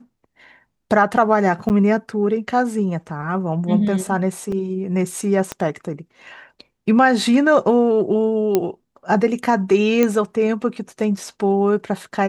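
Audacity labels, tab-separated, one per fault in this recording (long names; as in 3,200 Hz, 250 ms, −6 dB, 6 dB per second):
1.690000	1.700000	drop-out 9.1 ms
4.520000	4.520000	drop-out 3.9 ms
5.520000	5.520000	click −10 dBFS
8.550000	8.550000	click −4 dBFS
10.030000	10.030000	click −5 dBFS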